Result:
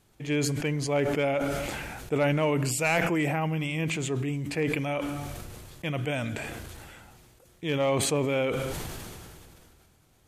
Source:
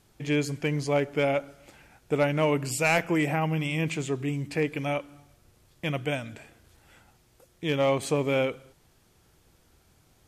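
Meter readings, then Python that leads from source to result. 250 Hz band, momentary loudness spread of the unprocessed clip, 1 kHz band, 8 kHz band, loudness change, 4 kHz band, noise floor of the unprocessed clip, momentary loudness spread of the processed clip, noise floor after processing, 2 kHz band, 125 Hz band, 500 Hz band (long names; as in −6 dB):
0.0 dB, 8 LU, −0.5 dB, +4.5 dB, −1.0 dB, +1.0 dB, −63 dBFS, 15 LU, −62 dBFS, −0.5 dB, +1.0 dB, −1.0 dB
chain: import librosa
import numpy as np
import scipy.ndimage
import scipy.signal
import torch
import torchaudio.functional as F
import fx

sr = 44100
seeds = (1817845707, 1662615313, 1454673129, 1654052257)

y = fx.peak_eq(x, sr, hz=5200.0, db=-3.0, octaves=0.36)
y = fx.sustainer(y, sr, db_per_s=24.0)
y = y * librosa.db_to_amplitude(-2.0)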